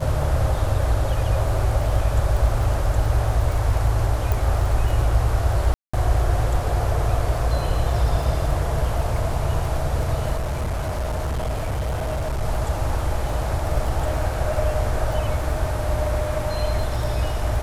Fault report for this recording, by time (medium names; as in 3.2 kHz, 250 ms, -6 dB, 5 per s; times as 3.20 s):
crackle 21 per s -27 dBFS
4.32 s: pop
5.74–5.93 s: dropout 195 ms
10.36–12.43 s: clipped -21 dBFS